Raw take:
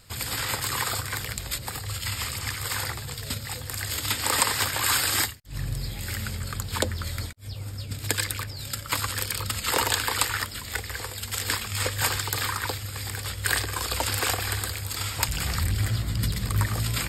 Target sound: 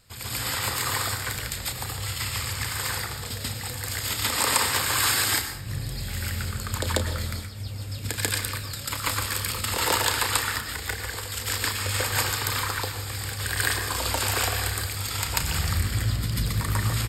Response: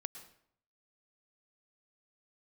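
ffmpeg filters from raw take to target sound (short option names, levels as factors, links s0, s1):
-filter_complex "[0:a]asplit=2[s0][s1];[s1]adelay=33,volume=0.299[s2];[s0][s2]amix=inputs=2:normalize=0,asplit=2[s3][s4];[1:a]atrim=start_sample=2205,adelay=141[s5];[s4][s5]afir=irnorm=-1:irlink=0,volume=2.66[s6];[s3][s6]amix=inputs=2:normalize=0,volume=0.501"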